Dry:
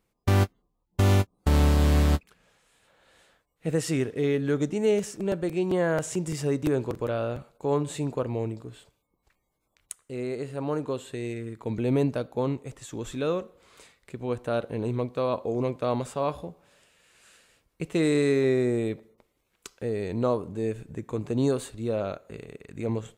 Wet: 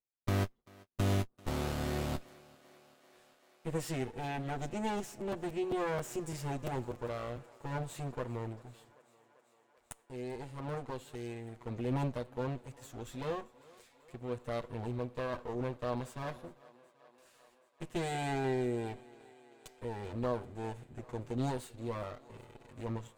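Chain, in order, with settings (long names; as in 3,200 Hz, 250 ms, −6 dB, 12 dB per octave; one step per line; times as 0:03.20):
lower of the sound and its delayed copy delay 8.2 ms
noise gate with hold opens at −51 dBFS
feedback echo with a high-pass in the loop 390 ms, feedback 78%, high-pass 250 Hz, level −22 dB
level −8.5 dB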